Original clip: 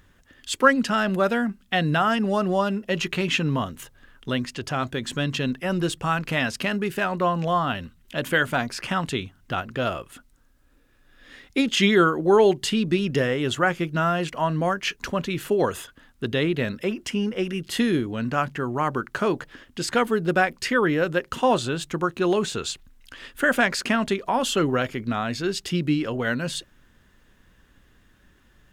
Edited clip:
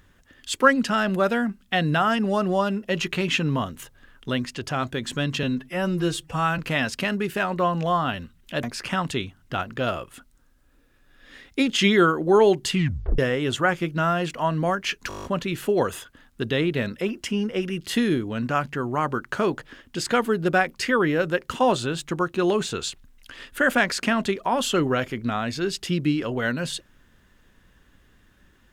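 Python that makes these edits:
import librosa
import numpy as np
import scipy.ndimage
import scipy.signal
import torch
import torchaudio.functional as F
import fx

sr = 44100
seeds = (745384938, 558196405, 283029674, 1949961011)

y = fx.edit(x, sr, fx.stretch_span(start_s=5.43, length_s=0.77, factor=1.5),
    fx.cut(start_s=8.25, length_s=0.37),
    fx.tape_stop(start_s=12.69, length_s=0.48),
    fx.stutter(start_s=15.07, slice_s=0.02, count=9), tone=tone)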